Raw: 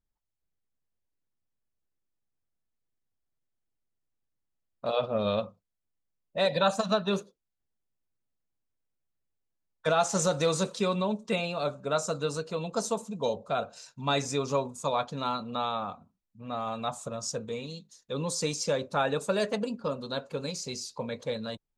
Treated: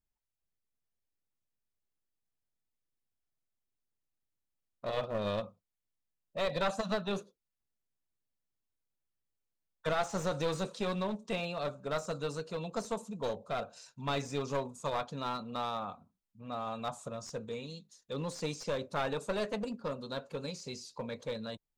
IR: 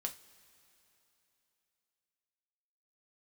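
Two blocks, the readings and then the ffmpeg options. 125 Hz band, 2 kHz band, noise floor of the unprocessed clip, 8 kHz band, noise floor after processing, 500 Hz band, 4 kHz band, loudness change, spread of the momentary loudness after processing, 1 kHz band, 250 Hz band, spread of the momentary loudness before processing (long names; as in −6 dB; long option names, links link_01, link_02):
−5.0 dB, −5.0 dB, −84 dBFS, −12.5 dB, below −85 dBFS, −6.0 dB, −7.5 dB, −6.5 dB, 9 LU, −6.0 dB, −5.5 dB, 10 LU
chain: -filter_complex "[0:a]aeval=exprs='clip(val(0),-1,0.0355)':channel_layout=same,acrossover=split=3800[link_01][link_02];[link_02]acompressor=threshold=-43dB:ratio=4:attack=1:release=60[link_03];[link_01][link_03]amix=inputs=2:normalize=0,volume=-4.5dB"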